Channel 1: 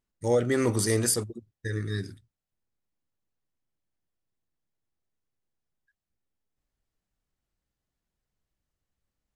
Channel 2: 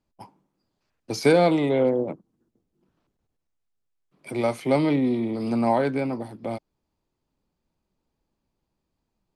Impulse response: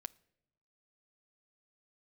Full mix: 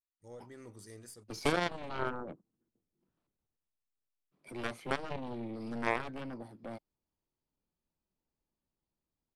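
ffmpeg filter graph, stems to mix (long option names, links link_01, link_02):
-filter_complex "[0:a]volume=-12dB[link_01];[1:a]adelay=200,volume=2dB[link_02];[link_01][link_02]amix=inputs=2:normalize=0,aeval=exprs='0.531*(cos(1*acos(clip(val(0)/0.531,-1,1)))-cos(1*PI/2))+0.211*(cos(3*acos(clip(val(0)/0.531,-1,1)))-cos(3*PI/2))+0.0237*(cos(4*acos(clip(val(0)/0.531,-1,1)))-cos(4*PI/2))':channel_layout=same,alimiter=limit=-14.5dB:level=0:latency=1:release=484"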